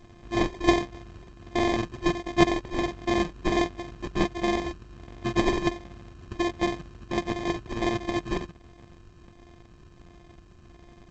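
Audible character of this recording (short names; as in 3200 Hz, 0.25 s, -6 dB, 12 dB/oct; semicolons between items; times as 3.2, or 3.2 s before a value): a buzz of ramps at a fixed pitch in blocks of 128 samples; phasing stages 12, 1.4 Hz, lowest notch 560–3000 Hz; aliases and images of a low sample rate 1400 Hz, jitter 0%; G.722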